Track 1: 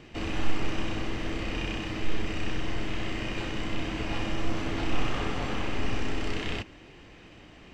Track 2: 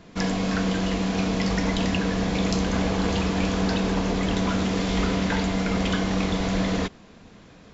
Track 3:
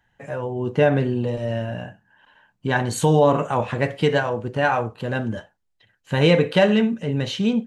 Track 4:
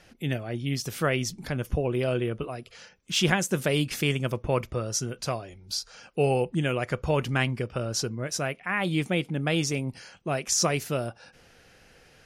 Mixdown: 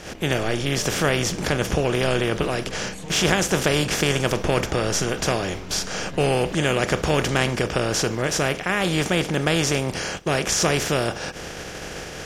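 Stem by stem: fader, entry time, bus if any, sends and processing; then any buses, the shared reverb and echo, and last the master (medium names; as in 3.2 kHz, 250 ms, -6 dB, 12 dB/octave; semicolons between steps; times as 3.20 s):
-5.5 dB, 0.00 s, no send, boxcar filter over 5 samples; auto duck -7 dB, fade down 0.25 s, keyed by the fourth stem
-8.0 dB, 0.60 s, no send, compression 3:1, threshold -32 dBFS, peak gain reduction 9.5 dB
-11.0 dB, 0.00 s, no send, compression, threshold -26 dBFS, peak gain reduction 14 dB
-0.5 dB, 0.00 s, no send, spectral levelling over time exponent 0.4; gate -29 dBFS, range -11 dB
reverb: none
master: none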